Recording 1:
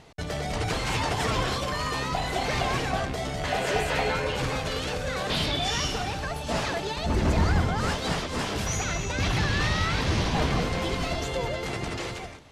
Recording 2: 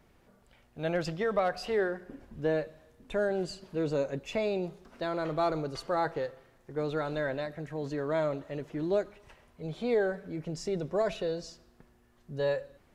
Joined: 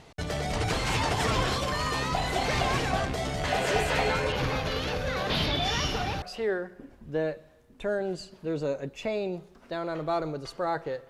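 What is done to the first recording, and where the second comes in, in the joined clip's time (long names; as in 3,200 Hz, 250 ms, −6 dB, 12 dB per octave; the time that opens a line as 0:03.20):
recording 1
0:04.32–0:06.22: parametric band 8,200 Hz −14.5 dB 0.52 octaves
0:06.22: continue with recording 2 from 0:01.52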